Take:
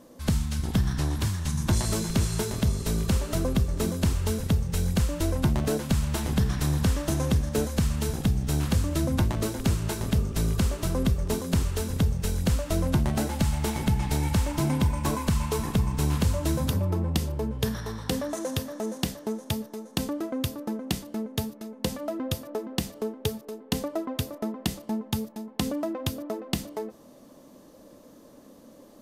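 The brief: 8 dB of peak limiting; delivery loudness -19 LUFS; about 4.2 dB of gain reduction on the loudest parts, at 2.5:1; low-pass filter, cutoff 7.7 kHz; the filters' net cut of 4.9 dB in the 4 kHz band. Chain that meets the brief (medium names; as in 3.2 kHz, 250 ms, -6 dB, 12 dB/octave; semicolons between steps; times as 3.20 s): low-pass 7.7 kHz; peaking EQ 4 kHz -6 dB; compression 2.5:1, threshold -25 dBFS; trim +15 dB; peak limiter -9.5 dBFS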